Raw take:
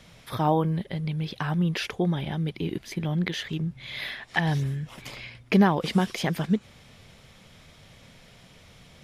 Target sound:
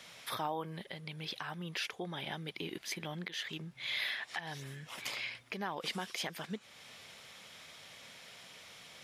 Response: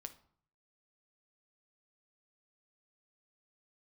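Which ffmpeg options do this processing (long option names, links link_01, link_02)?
-af "acompressor=threshold=-37dB:ratio=1.5,highpass=frequency=1000:poles=1,alimiter=level_in=4.5dB:limit=-24dB:level=0:latency=1:release=321,volume=-4.5dB,volume=3dB"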